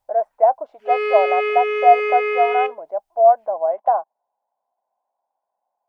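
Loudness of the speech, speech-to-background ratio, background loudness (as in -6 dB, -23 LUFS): -18.5 LUFS, 3.5 dB, -22.0 LUFS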